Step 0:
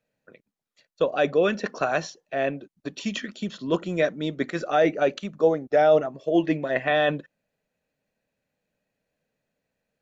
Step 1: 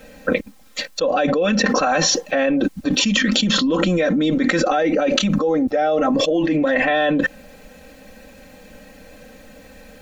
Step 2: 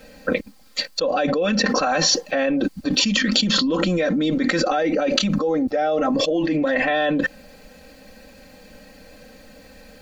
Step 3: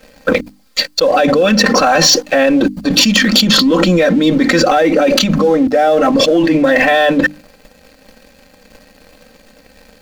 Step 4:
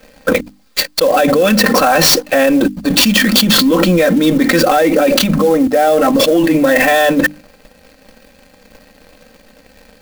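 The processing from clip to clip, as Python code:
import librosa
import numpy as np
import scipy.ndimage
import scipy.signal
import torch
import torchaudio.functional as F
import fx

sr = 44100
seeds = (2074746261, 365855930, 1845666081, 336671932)

y1 = fx.low_shelf(x, sr, hz=90.0, db=9.5)
y1 = y1 + 0.97 * np.pad(y1, (int(3.8 * sr / 1000.0), 0))[:len(y1)]
y1 = fx.env_flatten(y1, sr, amount_pct=100)
y1 = F.gain(torch.from_numpy(y1), -7.5).numpy()
y2 = fx.peak_eq(y1, sr, hz=4600.0, db=9.5, octaves=0.21)
y2 = F.gain(torch.from_numpy(y2), -2.5).numpy()
y3 = fx.leveller(y2, sr, passes=2)
y3 = np.clip(y3, -10.0 ** (-6.5 / 20.0), 10.0 ** (-6.5 / 20.0))
y3 = fx.hum_notches(y3, sr, base_hz=50, count=6)
y3 = F.gain(torch.from_numpy(y3), 2.5).numpy()
y4 = fx.clock_jitter(y3, sr, seeds[0], jitter_ms=0.022)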